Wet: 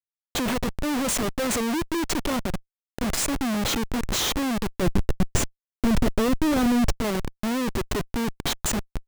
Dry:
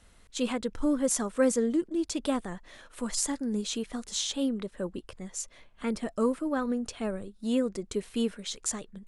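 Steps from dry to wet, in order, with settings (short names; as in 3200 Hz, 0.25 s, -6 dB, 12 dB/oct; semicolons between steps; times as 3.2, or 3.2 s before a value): Schmitt trigger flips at -36 dBFS; 4.82–6.92 low shelf 310 Hz +9 dB; gain +6.5 dB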